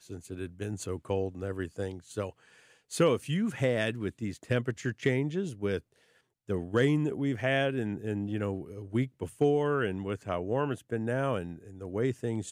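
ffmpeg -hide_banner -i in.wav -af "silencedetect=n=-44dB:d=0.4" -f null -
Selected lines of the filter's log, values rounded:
silence_start: 2.30
silence_end: 2.91 | silence_duration: 0.61
silence_start: 5.79
silence_end: 6.49 | silence_duration: 0.70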